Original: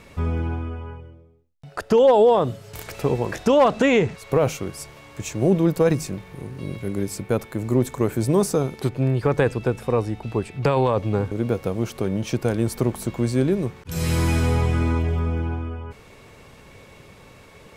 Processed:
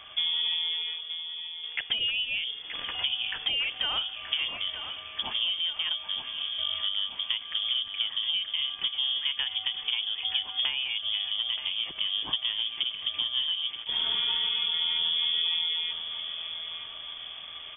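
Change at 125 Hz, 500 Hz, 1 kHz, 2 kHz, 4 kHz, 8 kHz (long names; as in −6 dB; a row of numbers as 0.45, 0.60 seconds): below −35 dB, below −30 dB, −17.5 dB, −2.0 dB, +16.5 dB, below −40 dB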